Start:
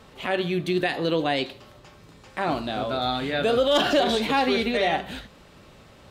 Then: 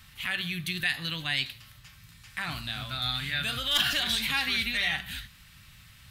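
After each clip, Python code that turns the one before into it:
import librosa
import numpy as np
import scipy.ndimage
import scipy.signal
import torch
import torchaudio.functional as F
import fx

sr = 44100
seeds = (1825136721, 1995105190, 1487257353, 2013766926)

y = fx.curve_eq(x, sr, hz=(130.0, 450.0, 1800.0, 7200.0, 12000.0), db=(0, -29, 1, 2, 12))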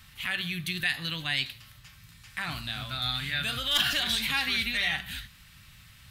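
y = x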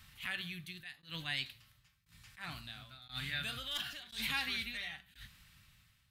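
y = fx.tremolo_shape(x, sr, shape='saw_down', hz=0.97, depth_pct=95)
y = fx.attack_slew(y, sr, db_per_s=210.0)
y = F.gain(torch.from_numpy(y), -5.5).numpy()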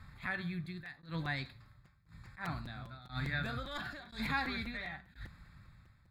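y = scipy.signal.lfilter(np.full(15, 1.0 / 15), 1.0, x)
y = fx.buffer_crackle(y, sr, first_s=0.65, period_s=0.2, block=256, kind='repeat')
y = F.gain(torch.from_numpy(y), 9.0).numpy()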